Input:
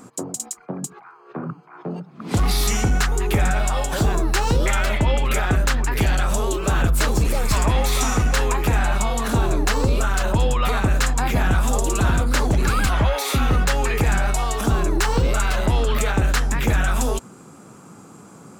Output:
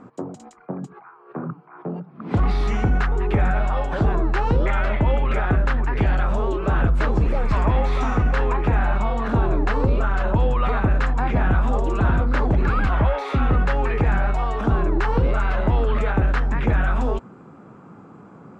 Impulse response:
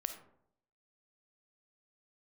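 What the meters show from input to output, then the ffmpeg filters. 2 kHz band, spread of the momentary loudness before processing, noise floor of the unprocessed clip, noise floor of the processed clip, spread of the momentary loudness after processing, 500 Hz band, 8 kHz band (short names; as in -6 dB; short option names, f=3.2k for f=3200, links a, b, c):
-3.0 dB, 10 LU, -45 dBFS, -46 dBFS, 12 LU, 0.0 dB, under -20 dB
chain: -af "lowpass=1.8k"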